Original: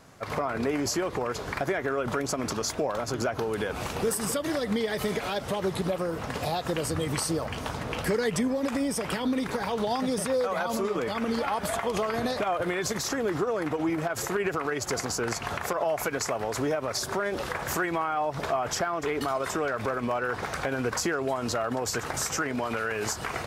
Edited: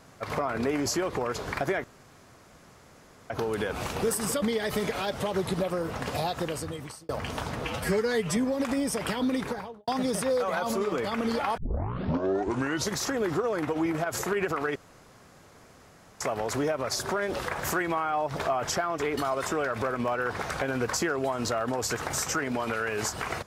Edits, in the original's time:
0:01.84–0:03.30: fill with room tone
0:04.42–0:04.70: remove
0:06.54–0:07.37: fade out
0:07.91–0:08.40: time-stretch 1.5×
0:09.40–0:09.91: fade out and dull
0:11.61: tape start 1.40 s
0:14.79–0:16.24: fill with room tone

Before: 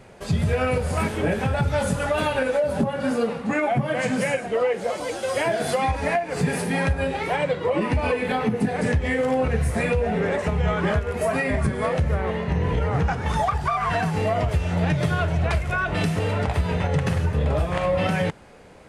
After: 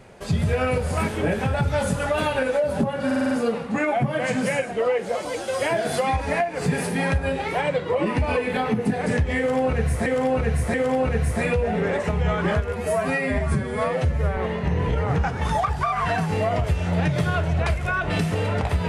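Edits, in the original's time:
0:03.06: stutter 0.05 s, 6 plays
0:09.13–0:09.81: repeat, 3 plays
0:11.12–0:12.21: time-stretch 1.5×

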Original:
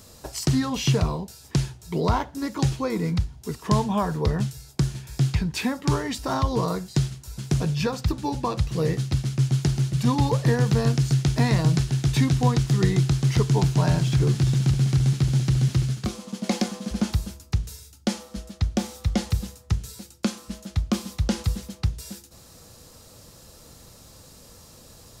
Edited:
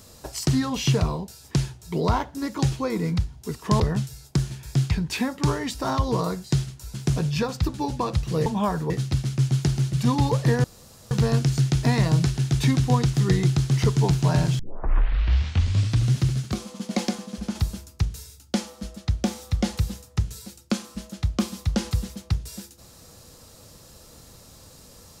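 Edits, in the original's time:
0:03.80–0:04.24: move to 0:08.90
0:10.64: splice in room tone 0.47 s
0:14.12: tape start 1.58 s
0:16.41–0:17.08: fade out, to −6 dB

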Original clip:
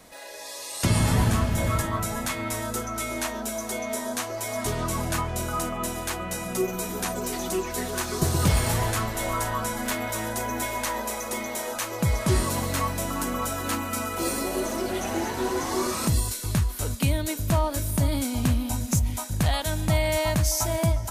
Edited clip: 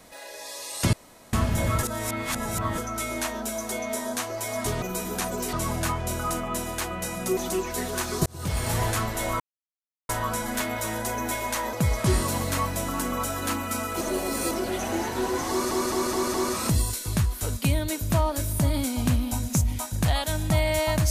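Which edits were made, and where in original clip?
0:00.93–0:01.33: fill with room tone
0:01.83–0:02.78: reverse
0:06.66–0:07.37: move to 0:04.82
0:08.26–0:08.82: fade in linear
0:09.40: splice in silence 0.69 s
0:11.04–0:11.95: remove
0:14.23–0:14.73: reverse
0:15.72: stutter 0.21 s, 5 plays

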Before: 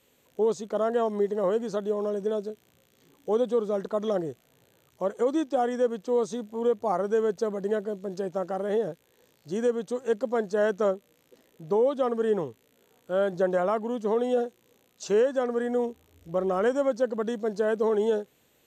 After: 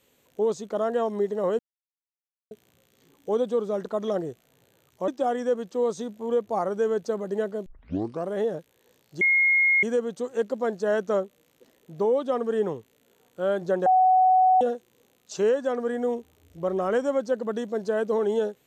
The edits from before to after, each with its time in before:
0:01.59–0:02.51: silence
0:05.08–0:05.41: remove
0:07.99: tape start 0.62 s
0:09.54: insert tone 2,150 Hz −17 dBFS 0.62 s
0:13.57–0:14.32: beep over 746 Hz −15 dBFS

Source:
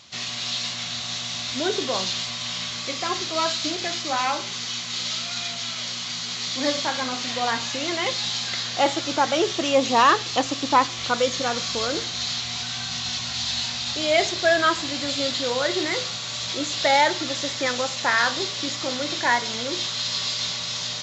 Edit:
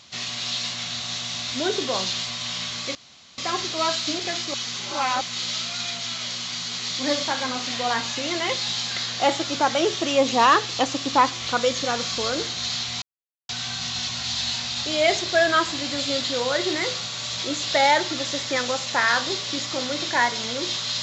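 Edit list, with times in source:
0:02.95: splice in room tone 0.43 s
0:04.11–0:04.78: reverse
0:12.59: splice in silence 0.47 s

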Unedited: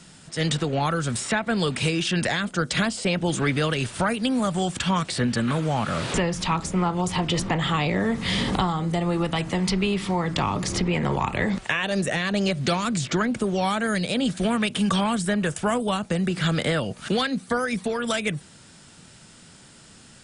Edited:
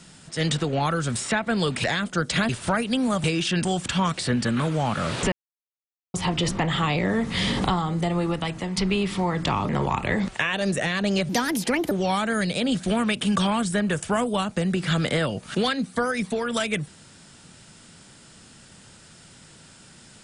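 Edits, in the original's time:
0:01.84–0:02.25: move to 0:04.56
0:02.90–0:03.81: remove
0:06.23–0:07.05: silence
0:09.06–0:09.68: fade out, to −6.5 dB
0:10.60–0:10.99: remove
0:12.59–0:13.45: play speed 138%

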